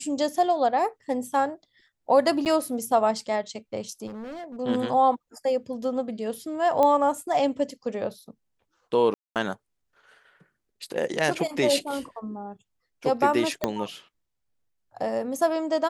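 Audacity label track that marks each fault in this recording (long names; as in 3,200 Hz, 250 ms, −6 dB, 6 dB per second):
2.450000	2.460000	drop-out 8.8 ms
4.060000	4.570000	clipping −34 dBFS
6.830000	6.830000	click −11 dBFS
9.140000	9.360000	drop-out 218 ms
13.640000	13.640000	click −10 dBFS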